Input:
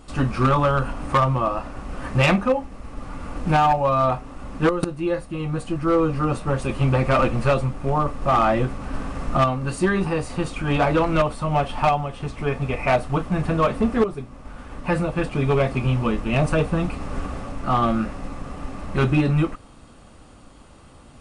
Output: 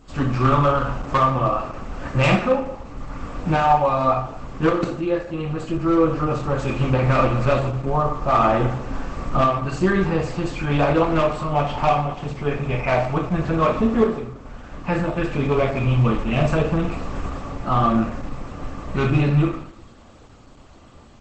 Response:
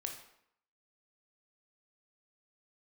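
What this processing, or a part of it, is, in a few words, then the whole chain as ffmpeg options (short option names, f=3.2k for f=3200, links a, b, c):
speakerphone in a meeting room: -filter_complex "[0:a]asplit=3[a][b][c];[a]afade=t=out:st=9.71:d=0.02[d];[b]lowshelf=f=180:g=5,afade=t=in:st=9.71:d=0.02,afade=t=out:st=10.25:d=0.02[e];[c]afade=t=in:st=10.25:d=0.02[f];[d][e][f]amix=inputs=3:normalize=0[g];[1:a]atrim=start_sample=2205[h];[g][h]afir=irnorm=-1:irlink=0,dynaudnorm=f=110:g=3:m=3dB" -ar 48000 -c:a libopus -b:a 12k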